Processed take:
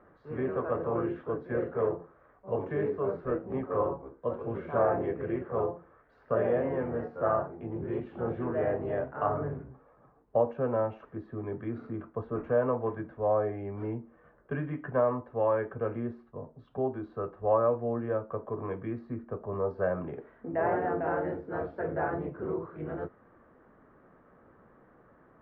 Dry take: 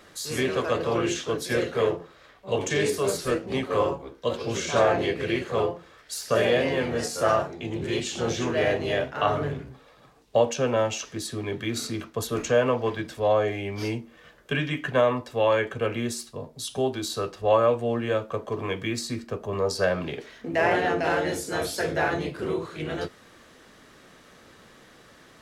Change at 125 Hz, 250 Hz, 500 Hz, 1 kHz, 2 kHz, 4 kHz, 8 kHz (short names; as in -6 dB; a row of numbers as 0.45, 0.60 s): -5.0 dB, -5.0 dB, -5.0 dB, -5.5 dB, -12.5 dB, under -30 dB, under -40 dB